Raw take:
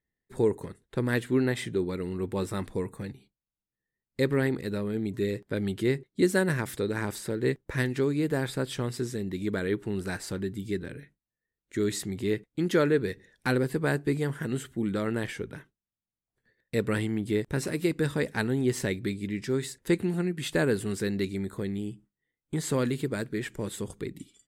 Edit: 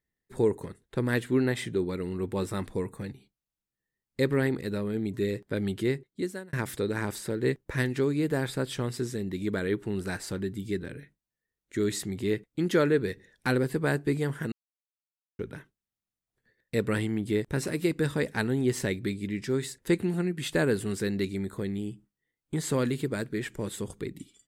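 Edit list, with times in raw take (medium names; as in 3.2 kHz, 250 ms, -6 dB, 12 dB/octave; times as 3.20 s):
5.77–6.53 s: fade out
14.52–15.39 s: mute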